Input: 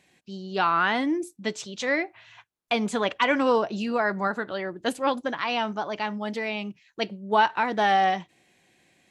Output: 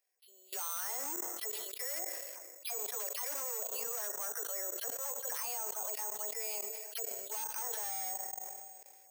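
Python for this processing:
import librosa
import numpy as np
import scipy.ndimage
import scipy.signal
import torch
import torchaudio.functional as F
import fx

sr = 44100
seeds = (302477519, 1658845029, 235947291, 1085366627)

p1 = fx.spec_delay(x, sr, highs='early', ms=140)
p2 = fx.spacing_loss(p1, sr, db_at_10k=44)
p3 = 10.0 ** (-18.5 / 20.0) * np.tanh(p2 / 10.0 ** (-18.5 / 20.0))
p4 = p3 + fx.echo_filtered(p3, sr, ms=337, feedback_pct=42, hz=1200.0, wet_db=-24, dry=0)
p5 = fx.room_shoebox(p4, sr, seeds[0], volume_m3=2400.0, walls='mixed', distance_m=0.4)
p6 = fx.transient(p5, sr, attack_db=-2, sustain_db=-7)
p7 = np.clip(p6, -10.0 ** (-25.5 / 20.0), 10.0 ** (-25.5 / 20.0))
p8 = scipy.signal.sosfilt(scipy.signal.cheby1(4, 1.0, 450.0, 'highpass', fs=sr, output='sos'), p7)
p9 = fx.high_shelf(p8, sr, hz=2500.0, db=8.5)
p10 = fx.level_steps(p9, sr, step_db=23)
p11 = (np.kron(p10[::6], np.eye(6)[0]) * 6)[:len(p10)]
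y = fx.sustainer(p11, sr, db_per_s=29.0)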